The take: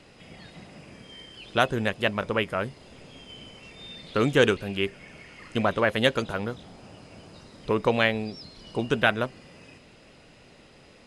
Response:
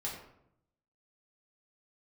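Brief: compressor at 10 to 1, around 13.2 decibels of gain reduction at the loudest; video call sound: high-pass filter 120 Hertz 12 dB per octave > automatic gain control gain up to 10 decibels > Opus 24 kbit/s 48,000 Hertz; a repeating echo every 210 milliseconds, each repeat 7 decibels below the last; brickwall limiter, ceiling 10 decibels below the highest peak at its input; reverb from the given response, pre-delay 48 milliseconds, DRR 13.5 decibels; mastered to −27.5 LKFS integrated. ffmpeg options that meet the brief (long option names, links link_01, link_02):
-filter_complex "[0:a]acompressor=threshold=-28dB:ratio=10,alimiter=level_in=1.5dB:limit=-24dB:level=0:latency=1,volume=-1.5dB,aecho=1:1:210|420|630|840|1050:0.447|0.201|0.0905|0.0407|0.0183,asplit=2[link_01][link_02];[1:a]atrim=start_sample=2205,adelay=48[link_03];[link_02][link_03]afir=irnorm=-1:irlink=0,volume=-15dB[link_04];[link_01][link_04]amix=inputs=2:normalize=0,highpass=120,dynaudnorm=maxgain=10dB,volume=13dB" -ar 48000 -c:a libopus -b:a 24k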